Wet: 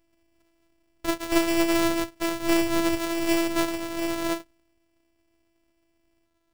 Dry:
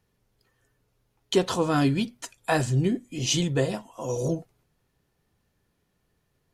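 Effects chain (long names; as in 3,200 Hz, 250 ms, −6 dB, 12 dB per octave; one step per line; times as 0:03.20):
samples sorted by size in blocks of 256 samples
phases set to zero 335 Hz
backwards echo 275 ms −3.5 dB
level +2.5 dB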